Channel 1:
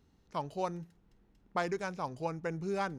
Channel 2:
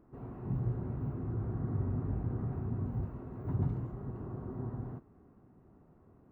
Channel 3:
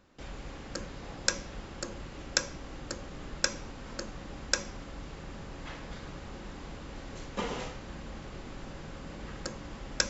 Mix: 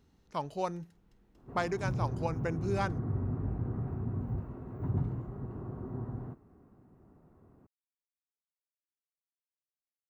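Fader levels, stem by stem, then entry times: +1.0 dB, +0.5 dB, off; 0.00 s, 1.35 s, off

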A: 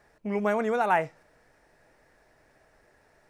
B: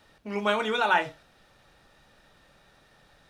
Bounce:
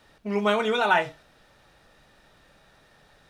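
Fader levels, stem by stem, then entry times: -4.5, +1.0 dB; 0.00, 0.00 s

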